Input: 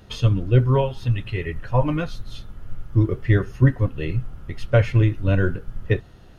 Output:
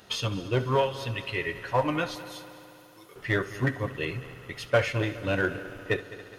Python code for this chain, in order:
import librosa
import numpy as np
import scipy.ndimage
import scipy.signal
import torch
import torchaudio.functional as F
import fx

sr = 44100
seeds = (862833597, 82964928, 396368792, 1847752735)

p1 = fx.differentiator(x, sr, at=(2.15, 3.16))
p2 = 10.0 ** (-15.5 / 20.0) * (np.abs((p1 / 10.0 ** (-15.5 / 20.0) + 3.0) % 4.0 - 2.0) - 1.0)
p3 = p1 + (p2 * librosa.db_to_amplitude(-11.0))
p4 = fx.highpass(p3, sr, hz=620.0, slope=6)
p5 = fx.high_shelf(p4, sr, hz=5100.0, db=4.0)
y = p5 + fx.echo_heads(p5, sr, ms=69, heads='first and third', feedback_pct=73, wet_db=-18.0, dry=0)